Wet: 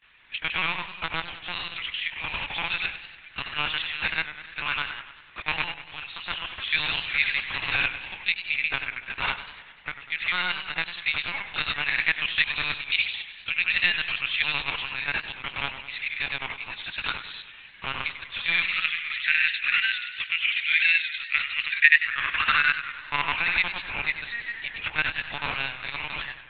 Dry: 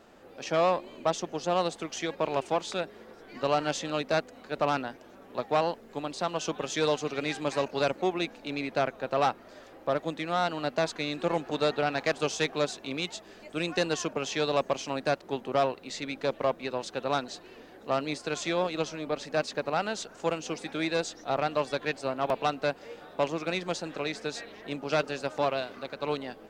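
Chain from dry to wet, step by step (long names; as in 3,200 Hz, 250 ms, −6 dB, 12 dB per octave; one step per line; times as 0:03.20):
in parallel at −10 dB: bit reduction 7 bits
on the sum: frequency shifter +14 Hz
high-pass filter sweep 2,200 Hz → 240 Hz, 0:21.67–0:25.44
granular cloud, pitch spread up and down by 0 semitones
high-pass filter sweep 90 Hz → 2,000 Hz, 0:17.90–0:18.92
linear-prediction vocoder at 8 kHz pitch kept
feedback echo with a swinging delay time 97 ms, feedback 58%, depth 110 cents, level −12 dB
level +5 dB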